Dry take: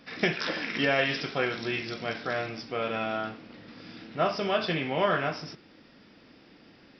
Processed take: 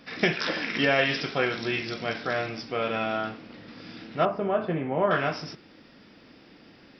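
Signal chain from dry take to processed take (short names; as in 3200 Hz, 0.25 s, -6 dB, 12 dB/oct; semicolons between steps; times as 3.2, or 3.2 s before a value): 4.25–5.11 LPF 1100 Hz 12 dB/oct; gain +2.5 dB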